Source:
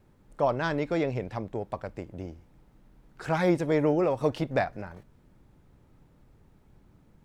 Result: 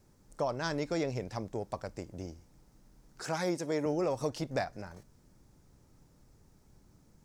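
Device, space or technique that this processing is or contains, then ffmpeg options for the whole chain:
over-bright horn tweeter: -filter_complex "[0:a]highshelf=f=4.4k:t=q:w=1.5:g=7.5,alimiter=limit=-18dB:level=0:latency=1:release=436,asettb=1/sr,asplit=3[a][b][c];[a]atrim=end=3.224[d];[b]atrim=start=3.22:end=3.86,asetpts=PTS-STARTPTS,afade=t=in:d=0.004:c=qsin,afade=t=out:st=0.636:d=0.004:c=qsin,highpass=170[e];[c]atrim=start=3.856[f];[d][e]acrossfade=d=0.004:c1=hsin:c2=qsin[g];[g][f]acrossfade=d=0.004:c1=qsin:c2=hsin,equalizer=f=5.3k:w=1:g=5,volume=-3.5dB"

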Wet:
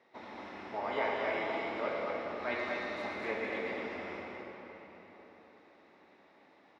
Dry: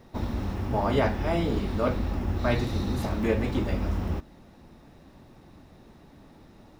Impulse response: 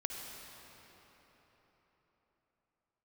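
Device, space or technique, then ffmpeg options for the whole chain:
station announcement: -filter_complex "[0:a]highpass=470,lowpass=4k,equalizer=f=2.1k:t=o:w=0.35:g=8.5,aecho=1:1:116.6|227.4:0.316|0.631[a];[1:a]atrim=start_sample=2205[b];[a][b]afir=irnorm=-1:irlink=0,volume=-7.5dB"

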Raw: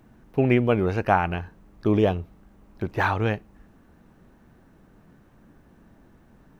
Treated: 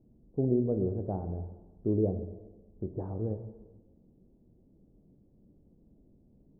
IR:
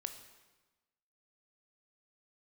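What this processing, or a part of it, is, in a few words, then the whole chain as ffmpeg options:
next room: -filter_complex "[0:a]lowpass=f=520:w=0.5412,lowpass=f=520:w=1.3066[a];[1:a]atrim=start_sample=2205[b];[a][b]afir=irnorm=-1:irlink=0,volume=-5dB"

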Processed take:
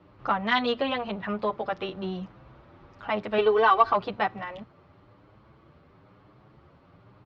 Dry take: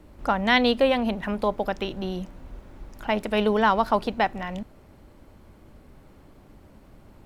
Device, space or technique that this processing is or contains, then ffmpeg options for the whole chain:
barber-pole flanger into a guitar amplifier: -filter_complex "[0:a]asplit=2[a][b];[b]adelay=8,afreqshift=1[c];[a][c]amix=inputs=2:normalize=1,asoftclip=type=tanh:threshold=-13.5dB,highpass=99,equalizer=f=120:t=q:w=4:g=8,equalizer=f=240:t=q:w=4:g=-7,equalizer=f=1.2k:t=q:w=4:g=8,lowpass=f=4.4k:w=0.5412,lowpass=f=4.4k:w=1.3066,asettb=1/sr,asplit=3[d][e][f];[d]atrim=end=3.384[g];[e]atrim=start=3.38:end=3.93,asetpts=PTS-STARTPTS,afade=t=in:d=0.004:c=qsin,afade=t=out:st=0.546:d=0.004:c=qsin,aecho=1:1:2.6:0.88,atrim=end_sample=24255[h];[f]atrim=start=3.926[i];[g][h]acrossfade=d=0.004:c1=hsin:c2=qsin[j];[j][i]acrossfade=d=0.004:c1=qsin:c2=hsin"

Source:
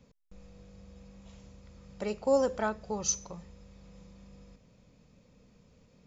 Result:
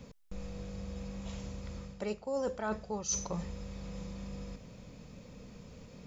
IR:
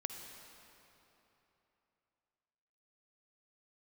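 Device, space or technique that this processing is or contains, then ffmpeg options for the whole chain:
compression on the reversed sound: -af "areverse,acompressor=threshold=-43dB:ratio=8,areverse,volume=10.5dB"

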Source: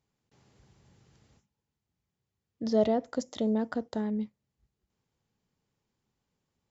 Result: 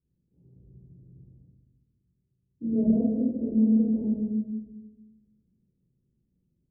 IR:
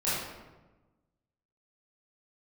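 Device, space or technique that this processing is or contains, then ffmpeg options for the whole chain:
next room: -filter_complex "[0:a]lowpass=f=350:w=0.5412,lowpass=f=350:w=1.3066[a];[1:a]atrim=start_sample=2205[b];[a][b]afir=irnorm=-1:irlink=0,volume=-1.5dB"

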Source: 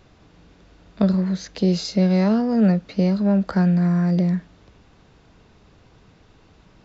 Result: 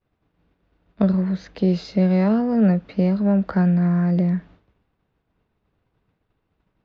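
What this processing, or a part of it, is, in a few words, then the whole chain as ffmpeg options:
hearing-loss simulation: -af "lowpass=2.9k,agate=range=-33dB:threshold=-40dB:ratio=3:detection=peak"

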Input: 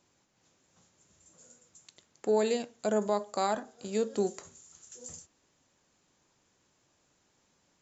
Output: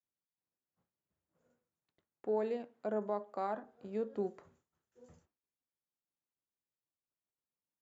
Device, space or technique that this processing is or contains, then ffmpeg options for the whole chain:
hearing-loss simulation: -filter_complex "[0:a]lowpass=1.7k,agate=range=-33dB:threshold=-59dB:ratio=3:detection=peak,asettb=1/sr,asplit=3[a][b][c];[a]atrim=end=2.264[d];[b]atrim=start=2.26:end=3.64,asetpts=PTS-STARTPTS,afade=t=in:d=0.004:c=qsin,afade=t=out:st=1.376:d=0.004:c=qsin,highpass=170[e];[c]atrim=start=3.636[f];[d][e]acrossfade=d=0.004:c1=hsin:c2=qsin[g];[g][f]acrossfade=d=0.004:c1=qsin:c2=hsin,volume=-7dB"

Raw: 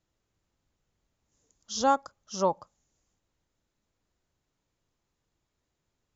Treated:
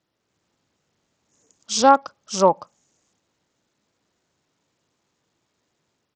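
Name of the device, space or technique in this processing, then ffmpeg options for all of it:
Bluetooth headset: -af "highpass=150,dynaudnorm=f=120:g=5:m=4dB,aresample=16000,aresample=44100,volume=6dB" -ar 44100 -c:a sbc -b:a 64k

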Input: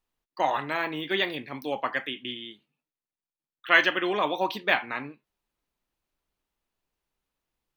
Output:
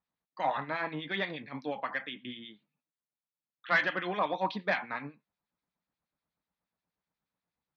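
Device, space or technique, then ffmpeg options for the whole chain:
guitar amplifier with harmonic tremolo: -filter_complex "[0:a]acrossover=split=1700[a][b];[a]aeval=exprs='val(0)*(1-0.7/2+0.7/2*cos(2*PI*8.3*n/s))':c=same[c];[b]aeval=exprs='val(0)*(1-0.7/2-0.7/2*cos(2*PI*8.3*n/s))':c=same[d];[c][d]amix=inputs=2:normalize=0,asoftclip=type=tanh:threshold=-17.5dB,highpass=86,equalizer=f=180:t=q:w=4:g=7,equalizer=f=370:t=q:w=4:g=-8,equalizer=f=2.9k:t=q:w=4:g=-9,lowpass=f=4.4k:w=0.5412,lowpass=f=4.4k:w=1.3066"

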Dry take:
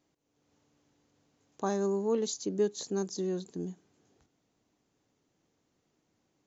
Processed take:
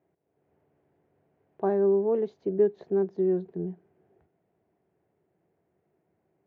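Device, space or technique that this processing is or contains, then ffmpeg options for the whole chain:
bass cabinet: -af "highpass=66,equalizer=f=82:t=q:w=4:g=5,equalizer=f=170:t=q:w=4:g=6,equalizer=f=270:t=q:w=4:g=-8,equalizer=f=380:t=q:w=4:g=10,equalizer=f=670:t=q:w=4:g=8,equalizer=f=1.2k:t=q:w=4:g=-5,lowpass=f=2.1k:w=0.5412,lowpass=f=2.1k:w=1.3066"

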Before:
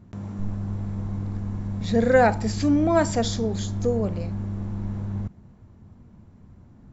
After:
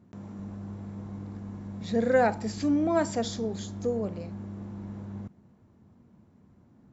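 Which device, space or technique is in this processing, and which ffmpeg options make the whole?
filter by subtraction: -filter_complex "[0:a]asplit=2[a][b];[b]lowpass=270,volume=-1[c];[a][c]amix=inputs=2:normalize=0,volume=-6.5dB"

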